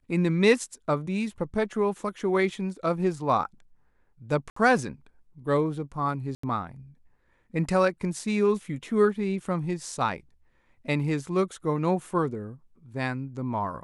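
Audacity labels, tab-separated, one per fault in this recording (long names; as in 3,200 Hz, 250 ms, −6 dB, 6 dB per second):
4.500000	4.560000	drop-out 64 ms
6.350000	6.430000	drop-out 84 ms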